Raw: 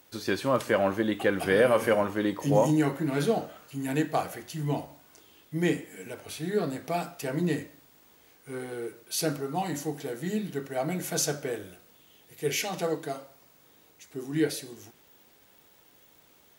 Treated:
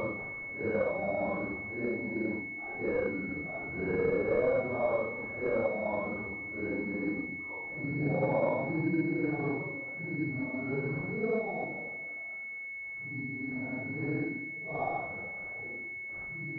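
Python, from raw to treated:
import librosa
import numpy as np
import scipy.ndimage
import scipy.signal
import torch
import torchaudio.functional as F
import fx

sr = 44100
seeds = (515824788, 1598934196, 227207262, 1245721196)

y = fx.vibrato(x, sr, rate_hz=1.2, depth_cents=64.0)
y = fx.paulstretch(y, sr, seeds[0], factor=4.1, window_s=0.05, from_s=0.55)
y = fx.pwm(y, sr, carrier_hz=2200.0)
y = F.gain(torch.from_numpy(y), -7.5).numpy()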